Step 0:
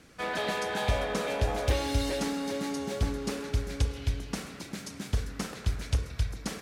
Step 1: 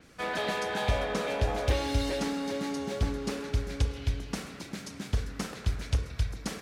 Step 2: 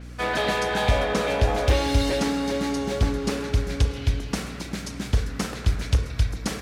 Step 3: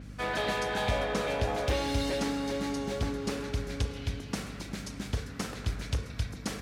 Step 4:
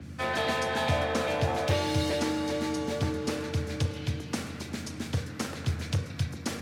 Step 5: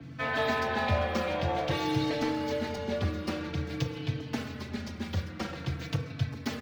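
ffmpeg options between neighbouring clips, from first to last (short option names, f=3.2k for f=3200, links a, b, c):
-af "adynamicequalizer=threshold=0.002:dfrequency=6500:dqfactor=0.7:tfrequency=6500:tqfactor=0.7:attack=5:release=100:ratio=0.375:range=2.5:mode=cutabove:tftype=highshelf"
-af "asoftclip=type=hard:threshold=-18.5dB,aeval=exprs='val(0)+0.00562*(sin(2*PI*60*n/s)+sin(2*PI*2*60*n/s)/2+sin(2*PI*3*60*n/s)/3+sin(2*PI*4*60*n/s)/4+sin(2*PI*5*60*n/s)/5)':c=same,volume=7dB"
-af "aeval=exprs='val(0)+0.0224*(sin(2*PI*50*n/s)+sin(2*PI*2*50*n/s)/2+sin(2*PI*3*50*n/s)/3+sin(2*PI*4*50*n/s)/4+sin(2*PI*5*50*n/s)/5)':c=same,highpass=f=90:p=1,volume=-6.5dB"
-filter_complex "[0:a]acrossover=split=210|5500[a][b][c];[c]acrusher=bits=6:mode=log:mix=0:aa=0.000001[d];[a][b][d]amix=inputs=3:normalize=0,afreqshift=31,volume=2dB"
-filter_complex "[0:a]acrossover=split=170|1600|5400[a][b][c][d];[d]acrusher=samples=19:mix=1:aa=0.000001:lfo=1:lforange=30.4:lforate=1.5[e];[a][b][c][e]amix=inputs=4:normalize=0,asplit=2[f][g];[g]adelay=4,afreqshift=-0.5[h];[f][h]amix=inputs=2:normalize=1,volume=2dB"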